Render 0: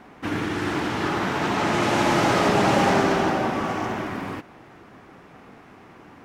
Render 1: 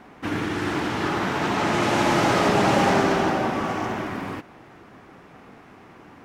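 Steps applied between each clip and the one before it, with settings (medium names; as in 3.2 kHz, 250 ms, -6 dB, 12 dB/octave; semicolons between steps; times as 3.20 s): no audible change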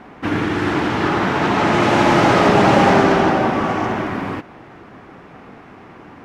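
treble shelf 6.1 kHz -12 dB; trim +7 dB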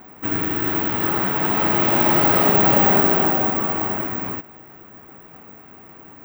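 careless resampling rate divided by 2×, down none, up zero stuff; trim -6 dB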